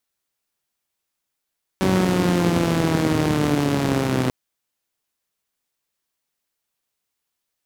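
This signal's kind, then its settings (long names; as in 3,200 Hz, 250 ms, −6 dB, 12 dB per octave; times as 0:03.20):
pulse-train model of a four-cylinder engine, changing speed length 2.49 s, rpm 5,700, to 3,800, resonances 120/180/270 Hz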